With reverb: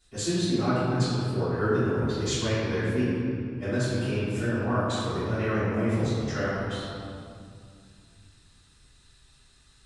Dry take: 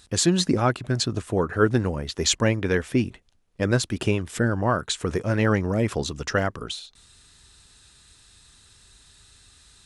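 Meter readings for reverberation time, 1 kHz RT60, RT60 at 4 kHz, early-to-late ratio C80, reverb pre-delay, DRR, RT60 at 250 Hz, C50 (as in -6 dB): 2.3 s, 2.3 s, 1.4 s, -1.0 dB, 3 ms, -18.5 dB, 3.2 s, -3.5 dB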